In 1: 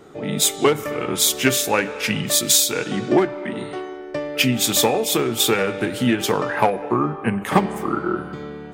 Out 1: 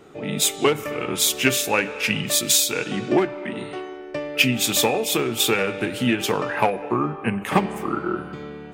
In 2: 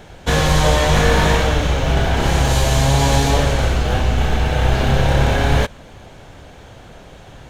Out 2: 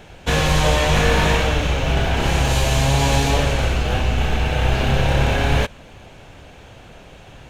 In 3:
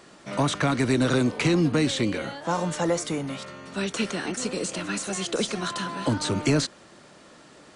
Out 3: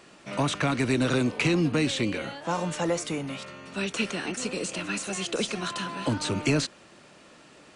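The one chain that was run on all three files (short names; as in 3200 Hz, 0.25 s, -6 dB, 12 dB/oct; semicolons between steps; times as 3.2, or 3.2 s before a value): bell 2600 Hz +6.5 dB 0.37 oct; gain -2.5 dB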